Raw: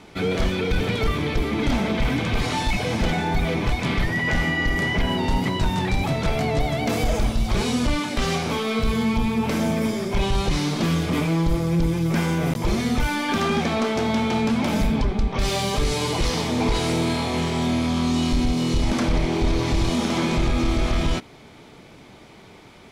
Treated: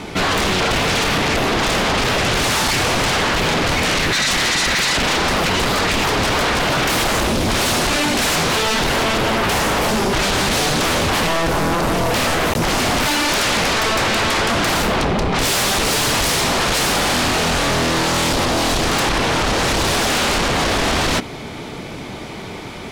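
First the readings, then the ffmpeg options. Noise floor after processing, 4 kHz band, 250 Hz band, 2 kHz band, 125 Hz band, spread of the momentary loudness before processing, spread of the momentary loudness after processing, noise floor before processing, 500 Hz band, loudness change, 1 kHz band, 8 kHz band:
-31 dBFS, +11.5 dB, 0.0 dB, +10.0 dB, 0.0 dB, 2 LU, 2 LU, -46 dBFS, +6.0 dB, +6.5 dB, +9.0 dB, +14.5 dB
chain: -af "aeval=exprs='0.237*sin(PI/2*5.01*val(0)/0.237)':c=same,volume=-2dB"

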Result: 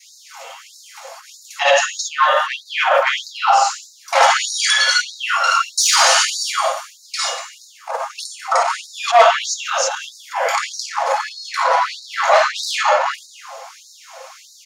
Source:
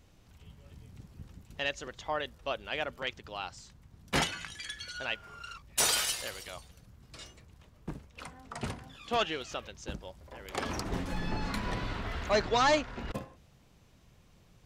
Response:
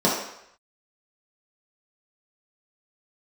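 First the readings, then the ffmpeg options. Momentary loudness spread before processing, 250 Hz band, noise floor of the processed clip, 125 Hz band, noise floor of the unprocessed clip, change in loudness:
22 LU, under -30 dB, -46 dBFS, under -40 dB, -61 dBFS, +16.5 dB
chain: -filter_complex "[0:a]bass=f=250:g=9,treble=f=4k:g=2,aecho=1:1:7.4:0.4,acrossover=split=7800[a][b];[b]acompressor=threshold=-57dB:ratio=6[c];[a][c]amix=inputs=2:normalize=0[d];[1:a]atrim=start_sample=2205,asetrate=52920,aresample=44100[e];[d][e]afir=irnorm=-1:irlink=0,adynamicequalizer=threshold=0.0447:dfrequency=1000:dqfactor=1.1:tfrequency=1000:tqfactor=1.1:attack=5:release=100:ratio=0.375:range=2.5:mode=boostabove:tftype=bell,asoftclip=type=tanh:threshold=-6dB,alimiter=level_in=17.5dB:limit=-1dB:release=50:level=0:latency=1,afftfilt=real='re*gte(b*sr/1024,470*pow(3800/470,0.5+0.5*sin(2*PI*1.6*pts/sr)))':imag='im*gte(b*sr/1024,470*pow(3800/470,0.5+0.5*sin(2*PI*1.6*pts/sr)))':win_size=1024:overlap=0.75,volume=-3dB"

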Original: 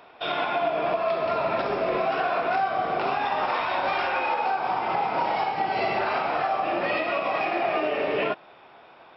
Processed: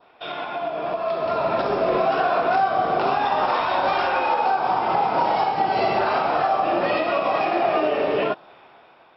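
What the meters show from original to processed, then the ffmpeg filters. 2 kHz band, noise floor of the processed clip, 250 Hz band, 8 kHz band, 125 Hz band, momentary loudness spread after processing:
+1.0 dB, -51 dBFS, +5.0 dB, n/a, +4.5 dB, 6 LU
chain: -af "adynamicequalizer=threshold=0.00562:dfrequency=2200:dqfactor=1.8:tfrequency=2200:tqfactor=1.8:attack=5:release=100:ratio=0.375:range=3.5:mode=cutabove:tftype=bell,dynaudnorm=f=490:g=5:m=9dB,volume=-3.5dB"

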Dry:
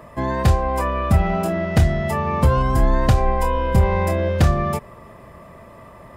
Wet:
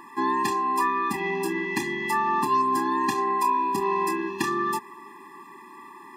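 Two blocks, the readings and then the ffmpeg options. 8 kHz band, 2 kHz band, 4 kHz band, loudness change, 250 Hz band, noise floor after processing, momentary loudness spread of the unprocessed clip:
-0.5 dB, 0.0 dB, -3.0 dB, -5.5 dB, -5.5 dB, -46 dBFS, 4 LU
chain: -filter_complex "[0:a]asplit=2[a][b];[b]asoftclip=type=tanh:threshold=-16.5dB,volume=-6dB[c];[a][c]amix=inputs=2:normalize=0,highpass=f=300:w=0.5412,highpass=f=300:w=1.3066,afftfilt=real='re*eq(mod(floor(b*sr/1024/400),2),0)':imag='im*eq(mod(floor(b*sr/1024/400),2),0)':win_size=1024:overlap=0.75"

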